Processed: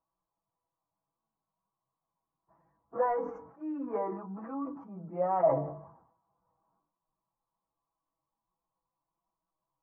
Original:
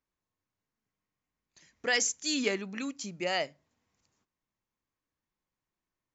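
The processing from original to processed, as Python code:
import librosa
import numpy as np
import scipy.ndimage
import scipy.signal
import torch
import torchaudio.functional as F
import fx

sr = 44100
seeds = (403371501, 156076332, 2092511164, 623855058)

y = scipy.signal.sosfilt(scipy.signal.ellip(4, 1.0, 70, 1100.0, 'lowpass', fs=sr, output='sos'), x)
y = fx.low_shelf_res(y, sr, hz=570.0, db=-7.5, q=1.5)
y = fx.hum_notches(y, sr, base_hz=50, count=9)
y = y + 0.56 * np.pad(y, (int(6.1 * sr / 1000.0), 0))[:len(y)]
y = fx.stretch_vocoder_free(y, sr, factor=1.6)
y = fx.sustainer(y, sr, db_per_s=78.0)
y = y * librosa.db_to_amplitude(9.0)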